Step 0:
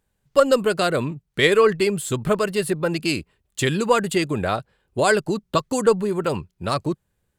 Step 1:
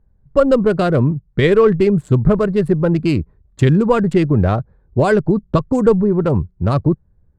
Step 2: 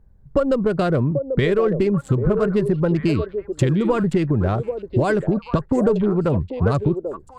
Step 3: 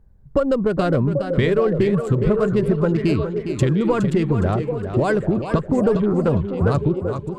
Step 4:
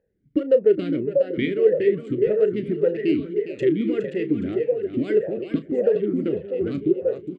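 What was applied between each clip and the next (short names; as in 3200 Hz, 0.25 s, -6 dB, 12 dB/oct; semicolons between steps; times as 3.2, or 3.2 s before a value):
Wiener smoothing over 15 samples; in parallel at -3 dB: limiter -11.5 dBFS, peak gain reduction 9 dB; on the sum: RIAA curve playback; gain -2 dB
compressor 6:1, threshold -20 dBFS, peak gain reduction 12.5 dB; delay with a stepping band-pass 0.789 s, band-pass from 460 Hz, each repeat 1.4 oct, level -4.5 dB; gain +4 dB
warbling echo 0.412 s, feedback 39%, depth 95 cents, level -9 dB
doubler 33 ms -13 dB; vowel sweep e-i 1.7 Hz; gain +7 dB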